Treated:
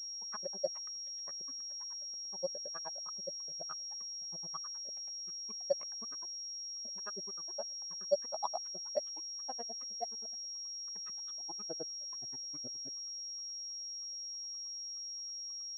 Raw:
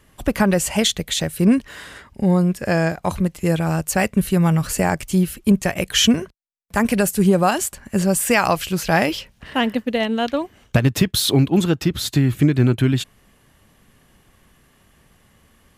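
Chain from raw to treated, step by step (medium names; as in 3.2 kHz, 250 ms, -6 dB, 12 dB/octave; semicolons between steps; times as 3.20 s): wah-wah 3.3 Hz 560–1300 Hz, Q 17; granulator 56 ms, grains 9.5 per s, pitch spread up and down by 0 st; class-D stage that switches slowly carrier 5.6 kHz; trim -1 dB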